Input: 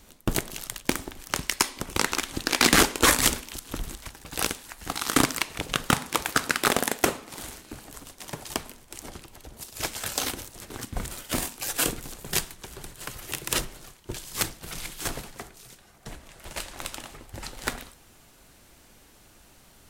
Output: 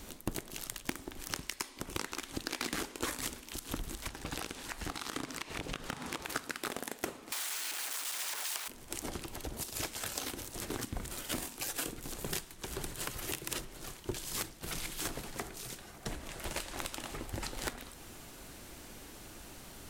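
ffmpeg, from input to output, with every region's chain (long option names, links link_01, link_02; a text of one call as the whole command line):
ffmpeg -i in.wav -filter_complex "[0:a]asettb=1/sr,asplit=3[link_01][link_02][link_03];[link_01]atrim=end=4.084[link_04];[link_02]atrim=start=4.08:end=6.3,asetpts=PTS-STARTPTS,afade=type=in:duration=0.004:curve=qsin,afade=type=out:start_time=2.216:duration=0.004:curve=qsin,acrusher=bits=6:mode=log:mix=0:aa=0.000001,acompressor=threshold=-35dB:ratio=3:attack=3.2:release=140:knee=1:detection=peak,highshelf=frequency=9400:gain=-11[link_05];[link_03]atrim=start=6.296[link_06];[link_04][link_05]acrossfade=duration=0.004:curve1=hsin:curve2=qsin[link_07];[link_07][link_06]acrossfade=duration=0.004:curve1=qsin:curve2=hsin,asettb=1/sr,asplit=3[link_08][link_09][link_10];[link_08]atrim=end=7.324[link_11];[link_09]atrim=start=7.32:end=8.68,asetpts=PTS-STARTPTS,afade=type=in:duration=0.004:curve=qsin,afade=type=out:start_time=1.356:duration=0.004:curve=qsin,aeval=exprs='val(0)+0.5*0.0668*sgn(val(0))':channel_layout=same,highpass=1200[link_12];[link_10]atrim=start=8.676[link_13];[link_11][link_12]acrossfade=duration=0.004:curve1=hsin:curve2=qsin[link_14];[link_14][link_13]acrossfade=duration=0.004:curve1=qsin:curve2=hsin,acompressor=threshold=-40dB:ratio=8,equalizer=frequency=320:width_type=o:width=0.85:gain=3.5,volume=4.5dB" out.wav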